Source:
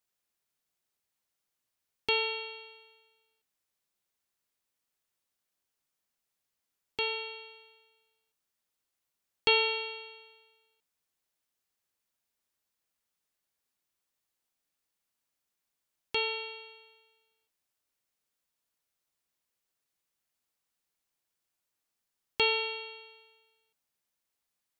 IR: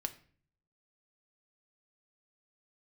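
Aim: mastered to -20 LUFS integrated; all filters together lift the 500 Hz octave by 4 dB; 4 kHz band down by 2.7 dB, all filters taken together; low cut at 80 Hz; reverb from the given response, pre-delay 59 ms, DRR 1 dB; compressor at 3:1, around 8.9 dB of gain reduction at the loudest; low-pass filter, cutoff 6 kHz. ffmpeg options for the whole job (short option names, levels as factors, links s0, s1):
-filter_complex "[0:a]highpass=80,lowpass=6000,equalizer=f=500:t=o:g=4.5,equalizer=f=4000:t=o:g=-3,acompressor=threshold=0.0251:ratio=3,asplit=2[s0][s1];[1:a]atrim=start_sample=2205,adelay=59[s2];[s1][s2]afir=irnorm=-1:irlink=0,volume=0.944[s3];[s0][s3]amix=inputs=2:normalize=0,volume=4.47"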